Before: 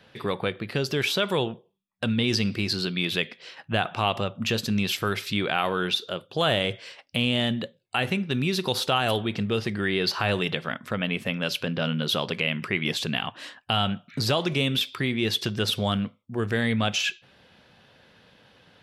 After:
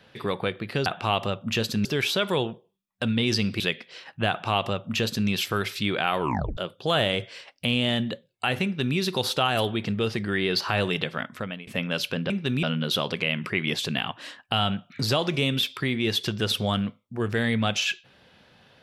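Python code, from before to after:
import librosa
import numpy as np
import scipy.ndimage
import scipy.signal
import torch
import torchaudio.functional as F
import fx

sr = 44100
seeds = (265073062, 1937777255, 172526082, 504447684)

y = fx.edit(x, sr, fx.cut(start_s=2.61, length_s=0.5),
    fx.duplicate(start_s=3.8, length_s=0.99, to_s=0.86),
    fx.tape_stop(start_s=5.7, length_s=0.38),
    fx.duplicate(start_s=8.15, length_s=0.33, to_s=11.81),
    fx.fade_out_to(start_s=10.8, length_s=0.38, floor_db=-23.0), tone=tone)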